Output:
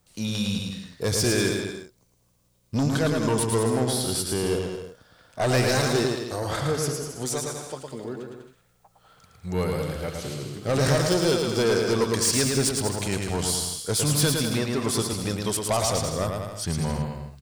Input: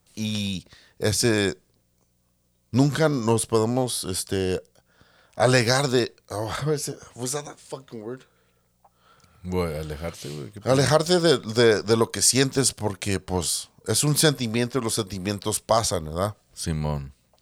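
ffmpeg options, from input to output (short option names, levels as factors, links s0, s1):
-af "asoftclip=type=tanh:threshold=0.119,aecho=1:1:110|198|268.4|324.7|369.8:0.631|0.398|0.251|0.158|0.1"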